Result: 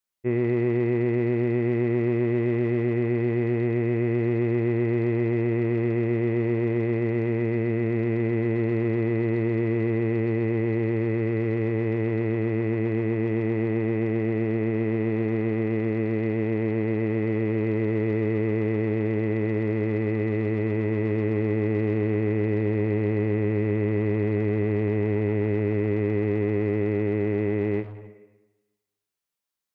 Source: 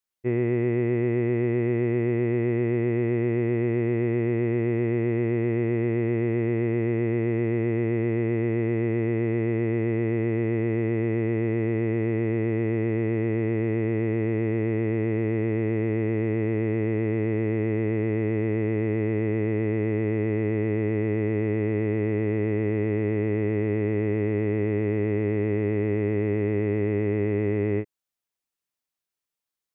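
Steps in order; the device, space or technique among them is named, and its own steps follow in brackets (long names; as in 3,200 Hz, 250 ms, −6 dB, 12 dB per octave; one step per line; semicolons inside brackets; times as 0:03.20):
saturated reverb return (on a send at −5 dB: convolution reverb RT60 1.2 s, pre-delay 3 ms + soft clipping −31 dBFS, distortion −8 dB)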